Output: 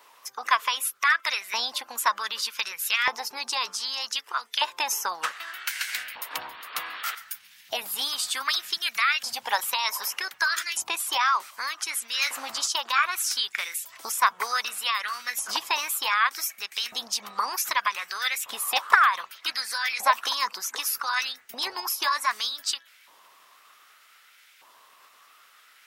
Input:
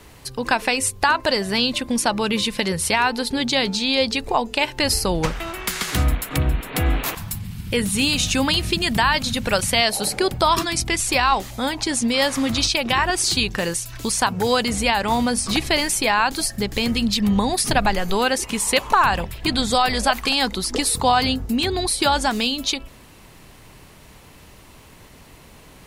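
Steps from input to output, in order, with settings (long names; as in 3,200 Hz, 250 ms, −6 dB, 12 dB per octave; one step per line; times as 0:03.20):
auto-filter high-pass saw up 0.65 Hz 670–1,600 Hz
harmonic and percussive parts rebalanced percussive +6 dB
formants moved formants +4 semitones
level −11.5 dB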